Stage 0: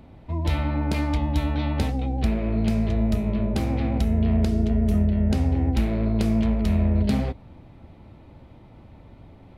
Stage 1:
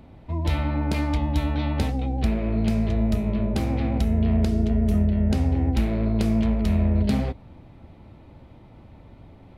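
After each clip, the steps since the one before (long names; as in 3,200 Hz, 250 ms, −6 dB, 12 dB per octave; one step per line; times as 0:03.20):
no processing that can be heard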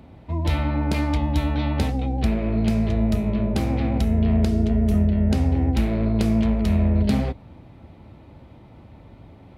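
high-pass filter 44 Hz
level +2 dB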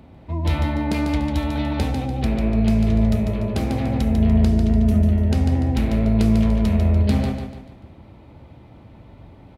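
repeating echo 146 ms, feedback 41%, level −6 dB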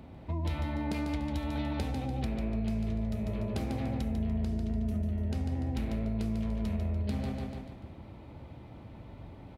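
downward compressor 4 to 1, threshold −28 dBFS, peak gain reduction 13.5 dB
level −3 dB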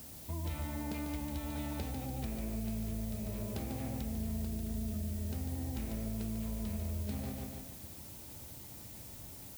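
background noise blue −45 dBFS
level −6 dB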